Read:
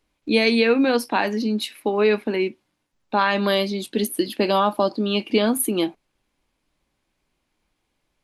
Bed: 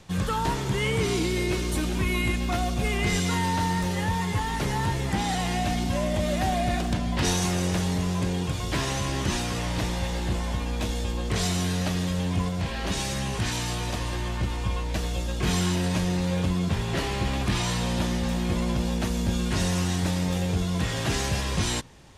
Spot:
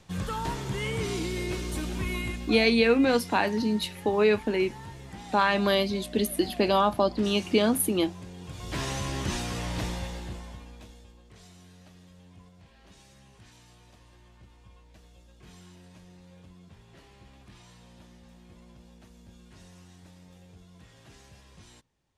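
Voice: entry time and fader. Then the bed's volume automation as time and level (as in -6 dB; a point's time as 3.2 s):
2.20 s, -3.5 dB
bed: 2.14 s -5.5 dB
2.94 s -16.5 dB
8.36 s -16.5 dB
8.82 s -4 dB
9.89 s -4 dB
11.24 s -26.5 dB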